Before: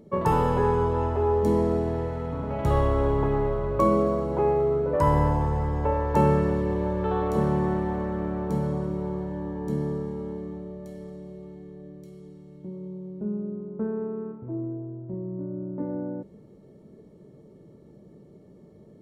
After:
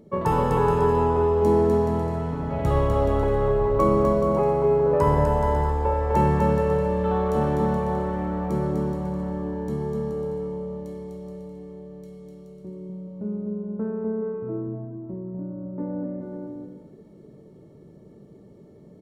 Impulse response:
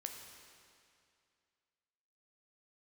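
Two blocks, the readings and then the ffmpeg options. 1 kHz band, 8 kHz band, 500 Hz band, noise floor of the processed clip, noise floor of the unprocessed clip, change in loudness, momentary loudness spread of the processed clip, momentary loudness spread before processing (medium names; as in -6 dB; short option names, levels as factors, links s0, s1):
+2.5 dB, no reading, +3.5 dB, -49 dBFS, -52 dBFS, +2.5 dB, 18 LU, 17 LU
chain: -af "aecho=1:1:250|425|547.5|633.2|693.3:0.631|0.398|0.251|0.158|0.1"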